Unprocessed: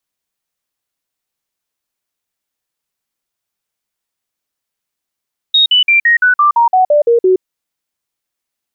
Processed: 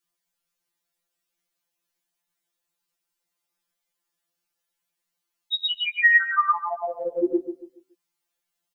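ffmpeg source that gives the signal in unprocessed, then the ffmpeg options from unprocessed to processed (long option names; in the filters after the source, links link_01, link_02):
-f lavfi -i "aevalsrc='0.501*clip(min(mod(t,0.17),0.12-mod(t,0.17))/0.005,0,1)*sin(2*PI*3750*pow(2,-floor(t/0.17)/3)*mod(t,0.17))':duration=1.87:sample_rate=44100"
-filter_complex "[0:a]asplit=2[link_01][link_02];[link_02]adelay=141,lowpass=frequency=1500:poles=1,volume=-9dB,asplit=2[link_03][link_04];[link_04]adelay=141,lowpass=frequency=1500:poles=1,volume=0.33,asplit=2[link_05][link_06];[link_06]adelay=141,lowpass=frequency=1500:poles=1,volume=0.33,asplit=2[link_07][link_08];[link_08]adelay=141,lowpass=frequency=1500:poles=1,volume=0.33[link_09];[link_03][link_05][link_07][link_09]amix=inputs=4:normalize=0[link_10];[link_01][link_10]amix=inputs=2:normalize=0,afftfilt=real='re*2.83*eq(mod(b,8),0)':imag='im*2.83*eq(mod(b,8),0)':win_size=2048:overlap=0.75"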